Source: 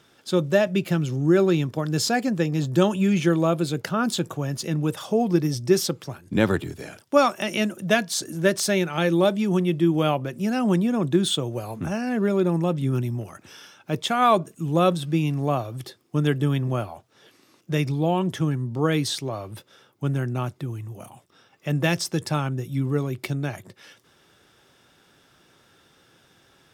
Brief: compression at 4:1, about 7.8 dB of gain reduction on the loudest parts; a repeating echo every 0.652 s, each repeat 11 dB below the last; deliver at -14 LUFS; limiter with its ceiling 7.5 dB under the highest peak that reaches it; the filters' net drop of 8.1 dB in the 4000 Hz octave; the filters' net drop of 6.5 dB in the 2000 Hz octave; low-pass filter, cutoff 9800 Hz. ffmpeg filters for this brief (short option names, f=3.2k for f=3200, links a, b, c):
-af "lowpass=9.8k,equalizer=f=2k:t=o:g=-6.5,equalizer=f=4k:t=o:g=-8.5,acompressor=threshold=-23dB:ratio=4,alimiter=limit=-21dB:level=0:latency=1,aecho=1:1:652|1304|1956:0.282|0.0789|0.0221,volume=16.5dB"